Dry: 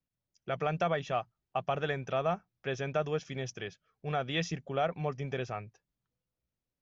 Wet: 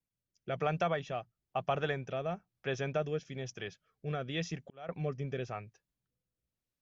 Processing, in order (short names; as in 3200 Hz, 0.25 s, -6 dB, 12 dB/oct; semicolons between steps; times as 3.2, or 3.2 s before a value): rotary speaker horn 1 Hz; 4.12–4.89 auto swell 0.745 s